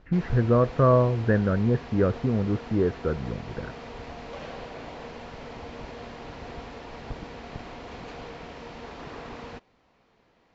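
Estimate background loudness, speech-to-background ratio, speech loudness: -40.5 LUFS, 16.5 dB, -24.0 LUFS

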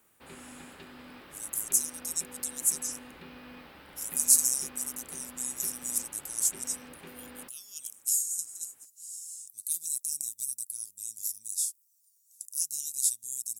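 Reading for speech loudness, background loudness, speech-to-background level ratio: -29.5 LUFS, -49.0 LUFS, 19.5 dB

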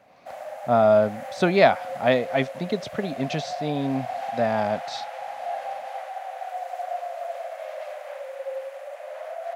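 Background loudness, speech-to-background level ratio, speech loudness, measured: -34.5 LUFS, 11.0 dB, -23.5 LUFS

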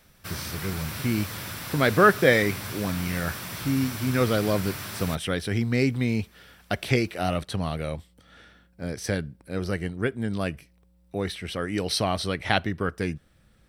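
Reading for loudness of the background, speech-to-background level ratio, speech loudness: -34.5 LUFS, 8.0 dB, -26.5 LUFS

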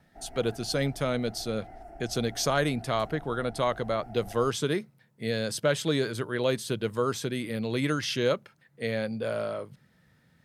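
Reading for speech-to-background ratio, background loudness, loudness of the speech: 18.5 dB, -48.0 LUFS, -29.5 LUFS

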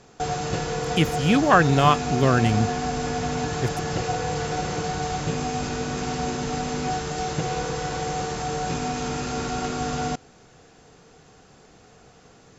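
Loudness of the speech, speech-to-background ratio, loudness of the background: -21.5 LUFS, 6.0 dB, -27.5 LUFS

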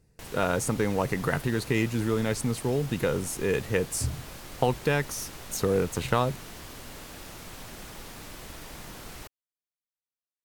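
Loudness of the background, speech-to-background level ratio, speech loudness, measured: -42.5 LUFS, 14.0 dB, -28.5 LUFS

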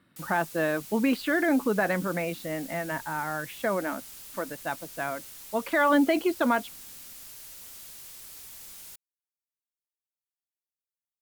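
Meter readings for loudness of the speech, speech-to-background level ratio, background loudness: -28.0 LUFS, 14.5 dB, -42.5 LUFS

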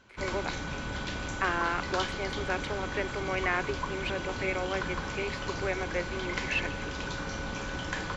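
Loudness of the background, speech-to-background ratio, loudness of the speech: -35.5 LUFS, 1.5 dB, -34.0 LUFS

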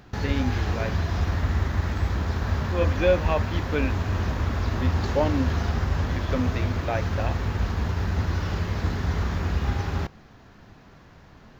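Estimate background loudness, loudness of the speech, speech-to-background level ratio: -27.0 LUFS, -29.0 LUFS, -2.0 dB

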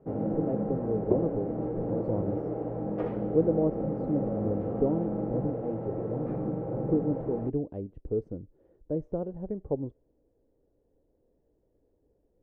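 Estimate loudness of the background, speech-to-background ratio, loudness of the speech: -32.5 LUFS, -0.5 dB, -33.0 LUFS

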